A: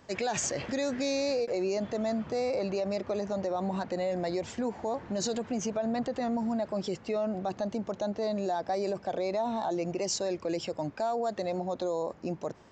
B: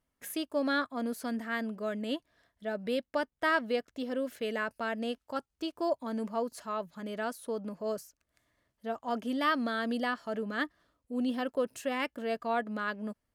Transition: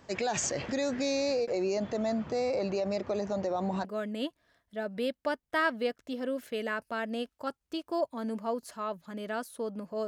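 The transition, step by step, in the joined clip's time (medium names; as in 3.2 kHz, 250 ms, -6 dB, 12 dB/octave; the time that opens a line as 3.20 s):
A
3.85 s: go over to B from 1.74 s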